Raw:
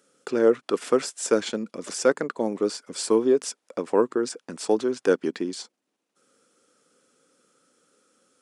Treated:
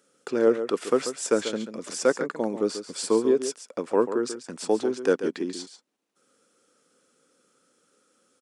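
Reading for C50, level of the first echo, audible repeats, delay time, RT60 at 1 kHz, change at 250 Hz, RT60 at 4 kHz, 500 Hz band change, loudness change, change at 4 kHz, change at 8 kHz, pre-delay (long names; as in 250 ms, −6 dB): no reverb audible, −10.5 dB, 1, 139 ms, no reverb audible, −1.0 dB, no reverb audible, −1.0 dB, −1.0 dB, −1.0 dB, −1.0 dB, no reverb audible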